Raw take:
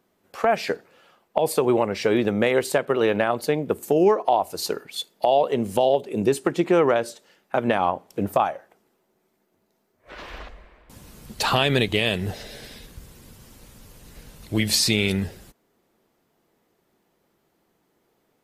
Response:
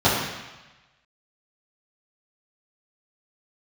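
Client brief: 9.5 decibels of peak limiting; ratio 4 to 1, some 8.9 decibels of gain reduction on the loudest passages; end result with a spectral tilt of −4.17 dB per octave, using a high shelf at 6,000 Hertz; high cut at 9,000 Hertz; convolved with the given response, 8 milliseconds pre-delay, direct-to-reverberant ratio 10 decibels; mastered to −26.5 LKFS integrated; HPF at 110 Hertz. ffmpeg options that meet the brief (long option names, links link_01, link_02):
-filter_complex "[0:a]highpass=110,lowpass=9000,highshelf=frequency=6000:gain=3,acompressor=threshold=-25dB:ratio=4,alimiter=limit=-19dB:level=0:latency=1,asplit=2[link_01][link_02];[1:a]atrim=start_sample=2205,adelay=8[link_03];[link_02][link_03]afir=irnorm=-1:irlink=0,volume=-31dB[link_04];[link_01][link_04]amix=inputs=2:normalize=0,volume=4.5dB"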